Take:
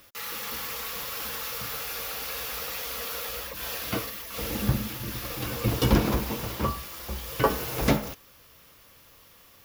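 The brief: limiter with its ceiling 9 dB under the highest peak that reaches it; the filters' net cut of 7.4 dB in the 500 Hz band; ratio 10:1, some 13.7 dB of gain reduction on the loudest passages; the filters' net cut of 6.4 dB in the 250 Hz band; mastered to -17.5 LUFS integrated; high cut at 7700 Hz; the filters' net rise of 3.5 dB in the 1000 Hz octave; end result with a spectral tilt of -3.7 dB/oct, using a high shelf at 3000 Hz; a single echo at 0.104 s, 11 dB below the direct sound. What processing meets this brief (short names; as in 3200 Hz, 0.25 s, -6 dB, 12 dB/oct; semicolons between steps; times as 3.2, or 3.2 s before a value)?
LPF 7700 Hz; bell 250 Hz -6.5 dB; bell 500 Hz -9 dB; bell 1000 Hz +7 dB; high shelf 3000 Hz -3 dB; compressor 10:1, threshold -31 dBFS; limiter -28.5 dBFS; echo 0.104 s -11 dB; gain +20 dB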